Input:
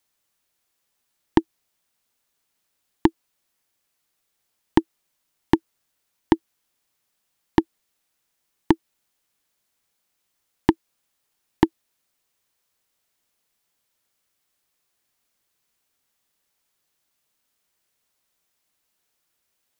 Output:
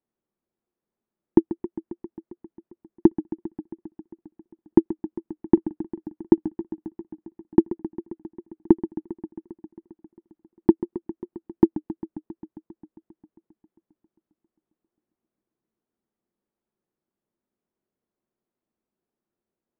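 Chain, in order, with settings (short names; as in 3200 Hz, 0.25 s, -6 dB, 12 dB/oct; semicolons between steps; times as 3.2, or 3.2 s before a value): Bessel low-pass 860 Hz, order 2; small resonant body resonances 220/350 Hz, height 12 dB, ringing for 35 ms; warbling echo 0.134 s, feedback 78%, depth 110 cents, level -14.5 dB; gain -7 dB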